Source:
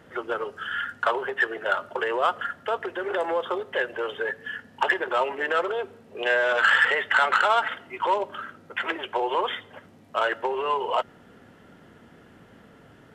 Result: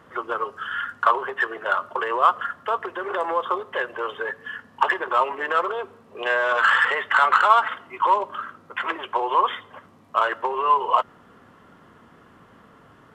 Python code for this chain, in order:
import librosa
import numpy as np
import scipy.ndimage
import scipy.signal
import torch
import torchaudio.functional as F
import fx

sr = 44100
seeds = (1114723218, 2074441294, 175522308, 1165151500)

y = fx.peak_eq(x, sr, hz=1100.0, db=13.5, octaves=0.41)
y = y * 10.0 ** (-1.5 / 20.0)